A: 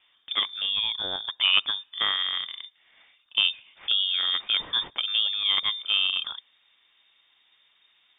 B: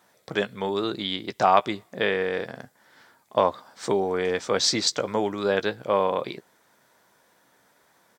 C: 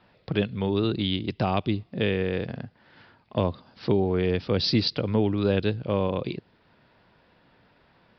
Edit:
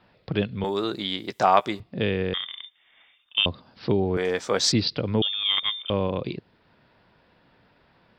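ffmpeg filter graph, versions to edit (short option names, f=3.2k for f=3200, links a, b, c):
-filter_complex "[1:a]asplit=2[a][b];[0:a]asplit=2[c][d];[2:a]asplit=5[e][f][g][h][i];[e]atrim=end=0.642[j];[a]atrim=start=0.638:end=1.802[k];[f]atrim=start=1.798:end=2.342[l];[c]atrim=start=2.338:end=3.462[m];[g]atrim=start=3.458:end=4.172[n];[b]atrim=start=4.168:end=4.722[o];[h]atrim=start=4.718:end=5.222[p];[d]atrim=start=5.218:end=5.902[q];[i]atrim=start=5.898[r];[j][k]acrossfade=d=0.004:c1=hsin:c2=hsin[s];[s][l]acrossfade=d=0.004:c1=hsin:c2=hsin[t];[t][m]acrossfade=d=0.004:c1=hsin:c2=hsin[u];[u][n]acrossfade=d=0.004:c1=hsin:c2=hsin[v];[v][o]acrossfade=d=0.004:c1=hsin:c2=hsin[w];[w][p]acrossfade=d=0.004:c1=hsin:c2=hsin[x];[x][q]acrossfade=d=0.004:c1=hsin:c2=hsin[y];[y][r]acrossfade=d=0.004:c1=hsin:c2=hsin"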